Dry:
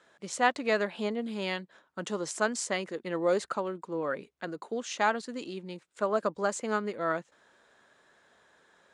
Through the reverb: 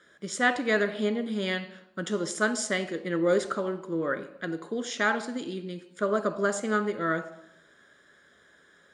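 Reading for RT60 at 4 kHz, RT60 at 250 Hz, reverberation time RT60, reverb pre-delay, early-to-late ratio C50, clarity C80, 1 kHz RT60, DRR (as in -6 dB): 0.65 s, 1.0 s, 0.80 s, 3 ms, 12.5 dB, 15.0 dB, 0.75 s, 8.5 dB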